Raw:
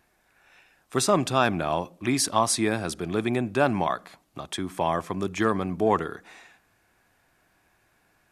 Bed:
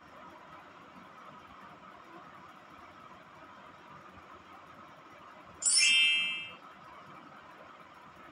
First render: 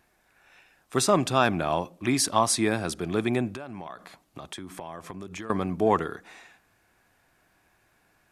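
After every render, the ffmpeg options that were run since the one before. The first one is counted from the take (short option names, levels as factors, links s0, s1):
-filter_complex "[0:a]asettb=1/sr,asplit=3[s0][s1][s2];[s0]atrim=end=3.544[s3];[s1]atrim=start=3.54:end=5.5,asetpts=PTS-STARTPTS,afade=t=in:d=0.004:c=qsin,afade=t=out:st=1.956:d=0.004:c=qsin,acompressor=threshold=0.02:ratio=10:attack=3.2:release=140:knee=1:detection=peak[s4];[s2]atrim=start=5.496[s5];[s3][s4]acrossfade=d=0.004:c1=hsin:c2=qsin[s6];[s6][s5]acrossfade=d=0.004:c1=qsin:c2=hsin"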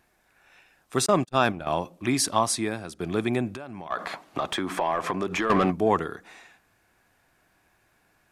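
-filter_complex "[0:a]asettb=1/sr,asplit=3[s0][s1][s2];[s0]atrim=end=1.064[s3];[s1]atrim=start=1.06:end=1.67,asetpts=PTS-STARTPTS,afade=t=in:d=0.004:c=qsin,afade=t=out:st=0.606:d=0.004:c=qsin,agate=range=0.00562:threshold=0.0447:ratio=16:release=100:detection=peak[s4];[s2]atrim=start=1.666[s5];[s3][s4]acrossfade=d=0.004:c1=hsin:c2=qsin[s6];[s6][s5]acrossfade=d=0.004:c1=qsin:c2=hsin,asplit=3[s7][s8][s9];[s7]afade=t=out:st=3.9:d=0.02[s10];[s8]asplit=2[s11][s12];[s12]highpass=f=720:p=1,volume=20,asoftclip=type=tanh:threshold=0.299[s13];[s11][s13]amix=inputs=2:normalize=0,lowpass=f=1600:p=1,volume=0.501,afade=t=in:st=3.9:d=0.02,afade=t=out:st=5.7:d=0.02[s14];[s9]afade=t=in:st=5.7:d=0.02[s15];[s10][s14][s15]amix=inputs=3:normalize=0,asplit=2[s16][s17];[s16]atrim=end=3,asetpts=PTS-STARTPTS,afade=t=out:st=2.34:d=0.66:silence=0.251189[s18];[s17]atrim=start=3,asetpts=PTS-STARTPTS,afade=t=in:d=0.004:c=hsin:silence=0.251189[s19];[s18][s19]concat=n=2:v=0:a=1"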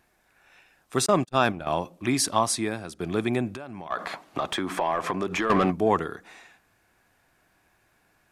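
-af anull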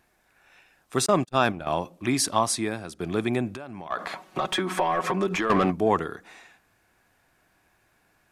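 -filter_complex "[0:a]asettb=1/sr,asplit=3[s0][s1][s2];[s0]atrim=end=4.154[s3];[s1]atrim=start=4.15:end=5.36,asetpts=PTS-STARTPTS,afade=t=in:d=0.004:c=qsin,afade=t=out:st=1.206:d=0.004:c=qsin,aecho=1:1:5.4:0.83,atrim=end_sample=53361[s4];[s2]atrim=start=5.356[s5];[s3][s4]acrossfade=d=0.004:c1=hsin:c2=qsin[s6];[s6][s5]acrossfade=d=0.004:c1=qsin:c2=hsin"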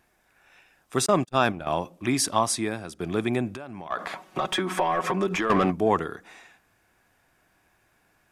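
-af "bandreject=f=4200:w=17"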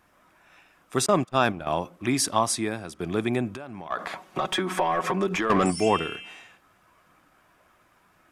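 -filter_complex "[1:a]volume=0.282[s0];[0:a][s0]amix=inputs=2:normalize=0"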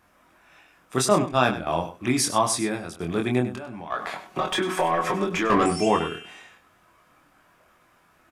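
-filter_complex "[0:a]asplit=2[s0][s1];[s1]adelay=24,volume=0.631[s2];[s0][s2]amix=inputs=2:normalize=0,aecho=1:1:99:0.224"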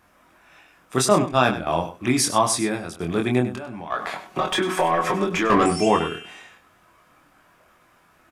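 -af "volume=1.33,alimiter=limit=0.708:level=0:latency=1"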